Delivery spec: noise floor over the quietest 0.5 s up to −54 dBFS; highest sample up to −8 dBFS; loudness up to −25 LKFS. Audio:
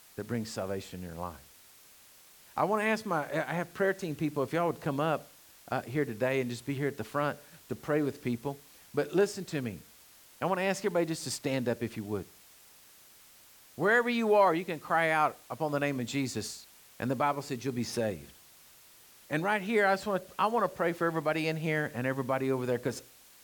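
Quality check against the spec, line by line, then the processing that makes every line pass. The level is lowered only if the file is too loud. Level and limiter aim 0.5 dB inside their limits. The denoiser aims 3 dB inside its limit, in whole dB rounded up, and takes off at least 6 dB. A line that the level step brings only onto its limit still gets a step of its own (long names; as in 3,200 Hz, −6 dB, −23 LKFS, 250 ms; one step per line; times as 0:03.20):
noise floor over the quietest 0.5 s −57 dBFS: in spec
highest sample −13.5 dBFS: in spec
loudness −31.5 LKFS: in spec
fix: no processing needed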